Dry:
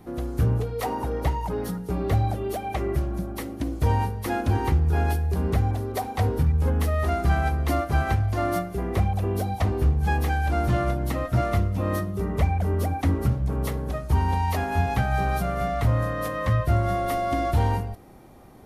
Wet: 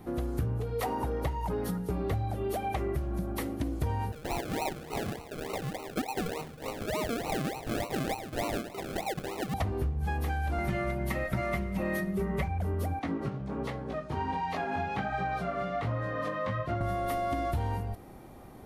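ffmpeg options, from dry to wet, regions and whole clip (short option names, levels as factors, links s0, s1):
-filter_complex "[0:a]asettb=1/sr,asplit=3[s0][s1][s2];[s0]atrim=end=4.124[s3];[s1]atrim=start=4.12:end=9.54,asetpts=PTS-STARTPTS,afade=t=in:d=0.004:c=qsin,afade=t=out:st=5.416:d=0.004:c=qsin,highpass=570,lowpass=2500,aecho=1:1:6.6:0.35,atrim=end_sample=239022,acrusher=samples=37:mix=1:aa=0.000001:lfo=1:lforange=22.2:lforate=3.4[s4];[s2]atrim=start=9.536[s5];[s3][s4]acrossfade=d=0.004:c1=hsin:c2=qsin[s6];[s6][s5]acrossfade=d=0.004:c1=qsin:c2=hsin,asettb=1/sr,asplit=3[s7][s8][s9];[s7]atrim=end=10.584[s10];[s8]atrim=start=10.58:end=12.48,asetpts=PTS-STARTPTS,afade=t=in:d=0.004:c=qsin,afade=t=out:st=1.896:d=0.004:c=qsin,equalizer=f=2100:t=o:w=0.57:g=8,aecho=1:1:5.3:0.86,atrim=end_sample=83790[s11];[s9]atrim=start=12.476[s12];[s10][s11]acrossfade=d=0.004:c1=hsin:c2=qsin[s13];[s13][s12]acrossfade=d=0.004:c1=qsin:c2=hsin,asettb=1/sr,asplit=3[s14][s15][s16];[s14]atrim=end=12.994[s17];[s15]atrim=start=12.99:end=16.81,asetpts=PTS-STARTPTS,afade=t=in:d=0.004:c=qsin,afade=t=out:st=3.816:d=0.004:c=qsin,flanger=delay=16.5:depth=4.3:speed=1.3,highpass=160,lowpass=4700[s18];[s16]atrim=start=16.806[s19];[s17][s18]acrossfade=d=0.004:c1=hsin:c2=qsin[s20];[s20][s19]acrossfade=d=0.004:c1=qsin:c2=hsin,equalizer=f=5700:w=1.5:g=-2.5,acompressor=threshold=0.0398:ratio=6"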